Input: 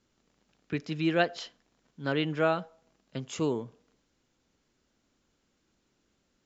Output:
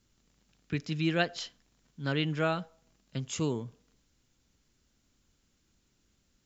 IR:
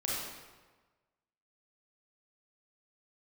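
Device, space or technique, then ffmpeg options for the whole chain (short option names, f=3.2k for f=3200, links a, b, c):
smiley-face EQ: -af "lowshelf=f=170:g=8.5,equalizer=f=510:t=o:w=2.8:g=-5.5,highshelf=f=5.8k:g=7.5"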